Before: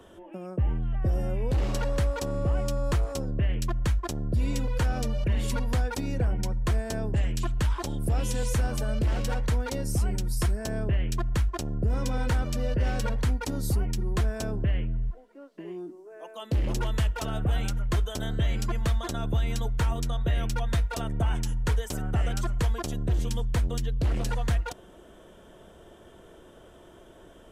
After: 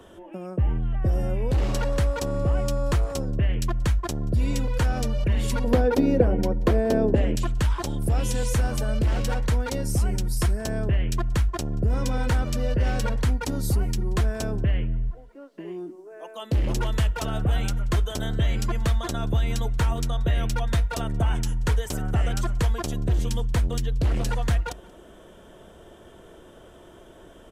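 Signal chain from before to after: 5.64–7.36 s: ten-band graphic EQ 125 Hz -4 dB, 250 Hz +9 dB, 500 Hz +11 dB, 8 kHz -9 dB; echo from a far wall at 31 m, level -23 dB; trim +3 dB

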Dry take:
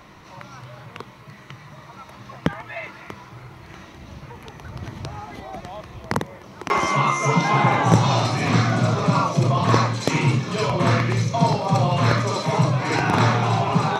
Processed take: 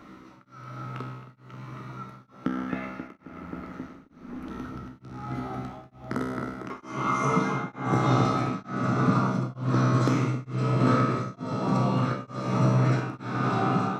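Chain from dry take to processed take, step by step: in parallel at +0.5 dB: compression, threshold -31 dBFS, peak gain reduction 20 dB; on the sum: feedback comb 64 Hz, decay 1.6 s, harmonics all, mix 90%; 3.07–4.49 s: ring modulator 31 Hz -> 140 Hz; small resonant body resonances 270/1300 Hz, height 15 dB, ringing for 20 ms; on a send: filtered feedback delay 267 ms, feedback 80%, low-pass 2.3 kHz, level -5.5 dB; on the sum: tremolo of two beating tones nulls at 1.1 Hz

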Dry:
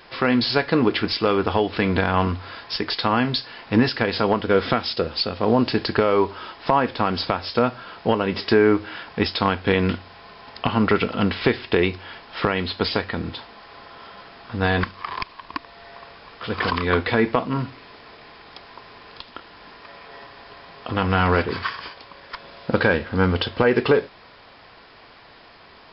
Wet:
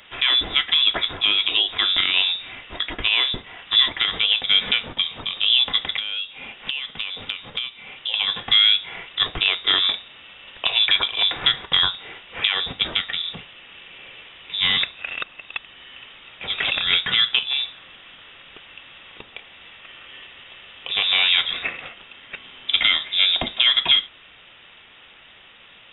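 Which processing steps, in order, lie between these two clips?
frequency inversion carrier 3.7 kHz; 5.96–8.14 s: compression 6:1, threshold -25 dBFS, peak gain reduction 11.5 dB

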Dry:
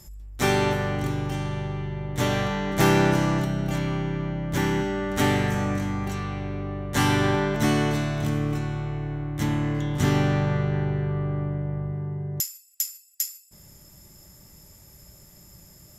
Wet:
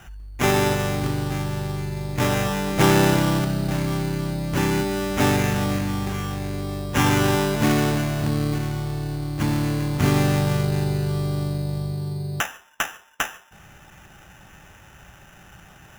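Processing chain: sample-and-hold 10×; trim +2.5 dB

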